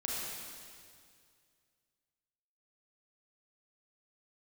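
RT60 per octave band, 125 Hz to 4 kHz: 2.6, 2.3, 2.2, 2.1, 2.1, 2.1 seconds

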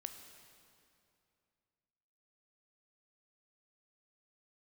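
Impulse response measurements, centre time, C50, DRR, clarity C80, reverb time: 37 ms, 7.5 dB, 6.5 dB, 8.5 dB, 2.6 s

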